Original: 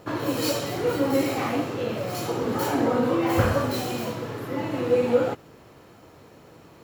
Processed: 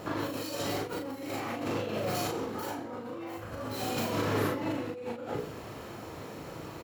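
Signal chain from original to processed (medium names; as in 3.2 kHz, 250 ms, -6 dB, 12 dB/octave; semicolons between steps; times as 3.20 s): hum notches 60/120/180/240/300/360/420/480/540 Hz; compressor with a negative ratio -35 dBFS, ratio -1; doubling 38 ms -3 dB; trim -2 dB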